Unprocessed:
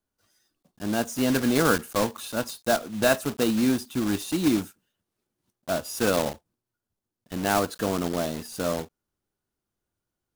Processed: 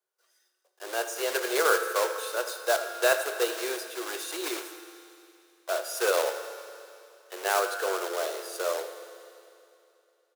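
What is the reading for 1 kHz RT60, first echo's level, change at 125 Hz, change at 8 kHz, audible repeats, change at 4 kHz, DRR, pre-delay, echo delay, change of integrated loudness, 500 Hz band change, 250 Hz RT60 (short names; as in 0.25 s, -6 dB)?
2.8 s, -14.0 dB, under -40 dB, -0.5 dB, 2, -1.0 dB, 6.5 dB, 9 ms, 81 ms, -3.0 dB, -1.0 dB, 2.8 s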